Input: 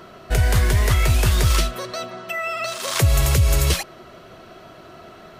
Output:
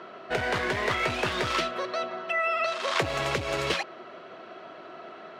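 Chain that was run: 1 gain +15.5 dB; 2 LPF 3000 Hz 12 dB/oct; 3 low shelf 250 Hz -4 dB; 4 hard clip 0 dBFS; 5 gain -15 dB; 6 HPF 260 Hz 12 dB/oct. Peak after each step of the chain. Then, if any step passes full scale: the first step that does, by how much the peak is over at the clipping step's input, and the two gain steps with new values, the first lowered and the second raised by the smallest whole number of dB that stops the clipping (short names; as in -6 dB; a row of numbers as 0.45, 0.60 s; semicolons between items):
+7.0, +6.5, +4.5, 0.0, -15.0, -11.5 dBFS; step 1, 4.5 dB; step 1 +10.5 dB, step 5 -10 dB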